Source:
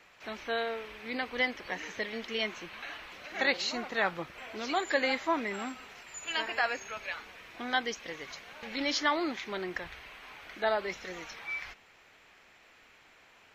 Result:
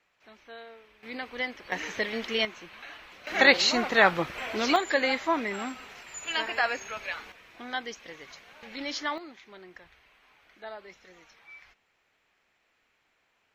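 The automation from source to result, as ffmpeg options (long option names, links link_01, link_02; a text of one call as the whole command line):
ffmpeg -i in.wav -af "asetnsamples=nb_out_samples=441:pad=0,asendcmd='1.03 volume volume -2.5dB;1.72 volume volume 5.5dB;2.45 volume volume -2.5dB;3.27 volume volume 9.5dB;4.76 volume volume 3dB;7.32 volume volume -3.5dB;9.18 volume volume -12.5dB',volume=-13dB" out.wav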